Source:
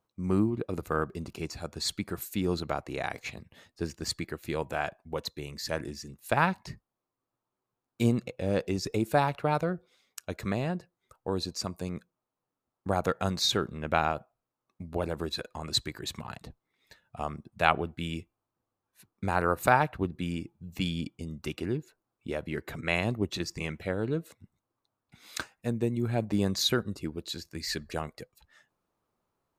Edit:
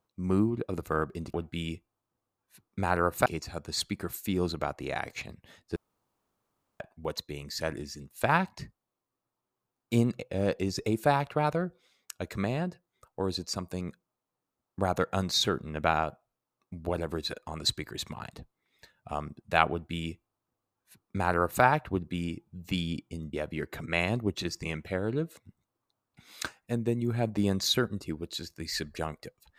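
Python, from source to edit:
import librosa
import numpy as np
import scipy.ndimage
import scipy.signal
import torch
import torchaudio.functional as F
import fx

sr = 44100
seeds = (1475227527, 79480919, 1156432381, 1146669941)

y = fx.edit(x, sr, fx.room_tone_fill(start_s=3.84, length_s=1.04),
    fx.duplicate(start_s=17.79, length_s=1.92, to_s=1.34),
    fx.cut(start_s=21.41, length_s=0.87), tone=tone)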